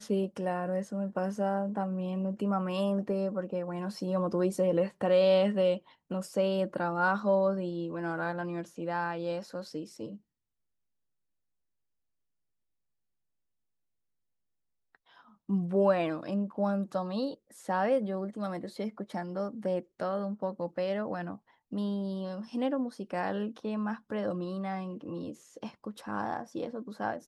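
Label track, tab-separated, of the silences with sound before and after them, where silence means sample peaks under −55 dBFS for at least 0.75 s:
10.180000	14.950000	silence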